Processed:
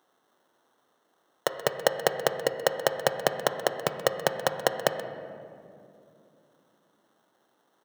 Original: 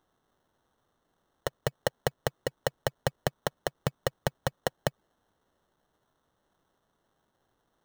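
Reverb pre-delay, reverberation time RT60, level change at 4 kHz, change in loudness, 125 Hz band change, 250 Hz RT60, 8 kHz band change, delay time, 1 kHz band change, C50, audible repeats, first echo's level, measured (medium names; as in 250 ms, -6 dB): 17 ms, 2.6 s, +6.5 dB, +6.0 dB, -6.0 dB, 4.5 s, +6.0 dB, 129 ms, +7.0 dB, 8.5 dB, 1, -16.5 dB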